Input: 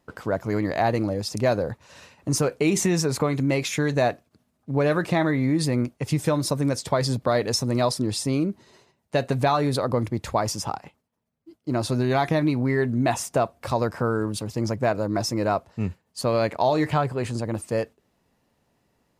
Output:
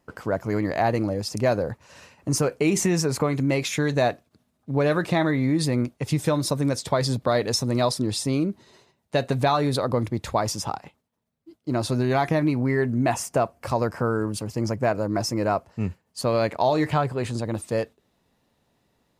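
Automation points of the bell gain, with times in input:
bell 3700 Hz 0.24 oct
3.23 s -5 dB
3.84 s +3.5 dB
11.7 s +3.5 dB
12.39 s -8 dB
15.53 s -8 dB
16.3 s +0.5 dB
17.03 s +0.5 dB
17.44 s +7.5 dB

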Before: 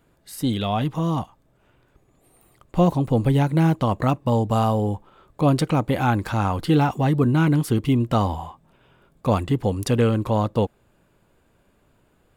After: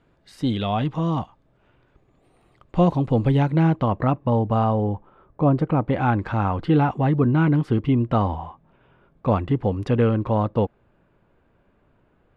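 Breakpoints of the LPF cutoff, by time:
3.32 s 4000 Hz
4.01 s 2100 Hz
4.76 s 2100 Hz
5.63 s 1200 Hz
5.95 s 2300 Hz

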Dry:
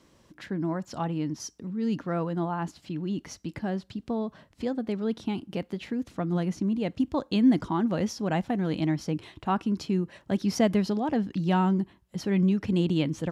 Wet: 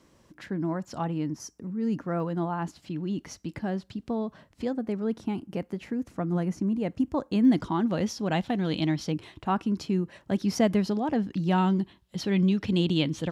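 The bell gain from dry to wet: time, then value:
bell 3600 Hz 0.89 oct
-3 dB
from 1.26 s -11 dB
from 2.2 s -1.5 dB
from 4.73 s -9 dB
from 7.45 s +2.5 dB
from 8.32 s +9 dB
from 9.12 s -1 dB
from 11.58 s +8.5 dB

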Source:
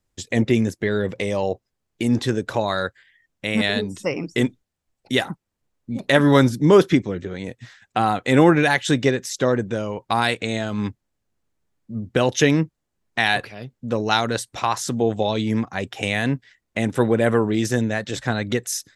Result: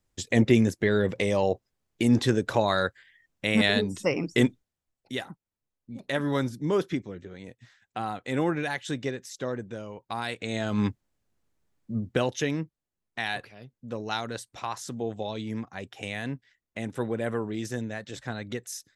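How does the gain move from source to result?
4.46 s -1.5 dB
5.16 s -12.5 dB
10.26 s -12.5 dB
10.78 s -0.5 dB
11.95 s -0.5 dB
12.4 s -11.5 dB

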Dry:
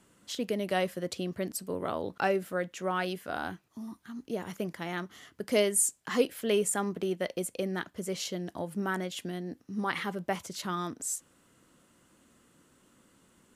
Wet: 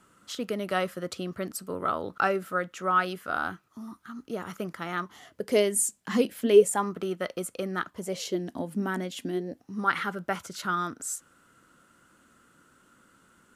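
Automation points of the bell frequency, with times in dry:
bell +14 dB 0.36 oct
4.97 s 1300 Hz
5.83 s 210 Hz
6.41 s 210 Hz
6.86 s 1300 Hz
7.87 s 1300 Hz
8.46 s 250 Hz
9.23 s 250 Hz
9.85 s 1400 Hz

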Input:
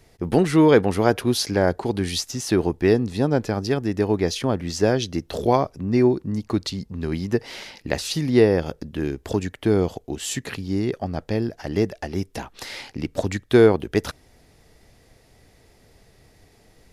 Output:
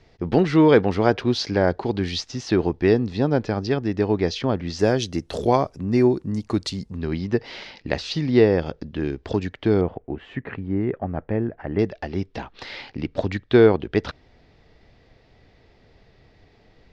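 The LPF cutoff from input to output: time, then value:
LPF 24 dB/oct
5100 Hz
from 4.79 s 9600 Hz
from 6.97 s 4900 Hz
from 9.81 s 2100 Hz
from 11.79 s 4400 Hz

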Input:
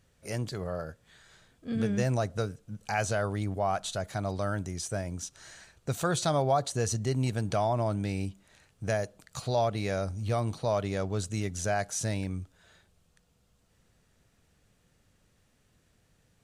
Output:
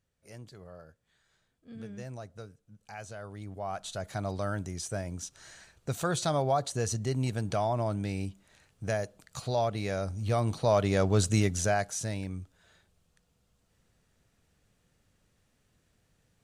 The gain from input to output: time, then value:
3.15 s -14 dB
4.14 s -1.5 dB
9.98 s -1.5 dB
11.32 s +8 dB
12.04 s -3 dB

